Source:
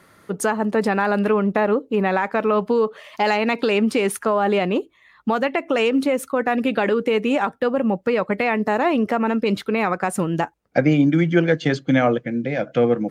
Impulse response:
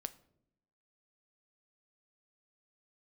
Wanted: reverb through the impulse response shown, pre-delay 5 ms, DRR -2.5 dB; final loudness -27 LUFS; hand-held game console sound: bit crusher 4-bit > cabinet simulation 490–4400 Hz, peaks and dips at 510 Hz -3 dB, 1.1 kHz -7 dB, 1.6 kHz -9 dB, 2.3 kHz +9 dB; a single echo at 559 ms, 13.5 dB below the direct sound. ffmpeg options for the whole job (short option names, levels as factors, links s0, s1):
-filter_complex "[0:a]aecho=1:1:559:0.211,asplit=2[s0][s1];[1:a]atrim=start_sample=2205,adelay=5[s2];[s1][s2]afir=irnorm=-1:irlink=0,volume=1.78[s3];[s0][s3]amix=inputs=2:normalize=0,acrusher=bits=3:mix=0:aa=0.000001,highpass=490,equalizer=f=510:t=q:w=4:g=-3,equalizer=f=1100:t=q:w=4:g=-7,equalizer=f=1600:t=q:w=4:g=-9,equalizer=f=2300:t=q:w=4:g=9,lowpass=f=4400:w=0.5412,lowpass=f=4400:w=1.3066,volume=0.398"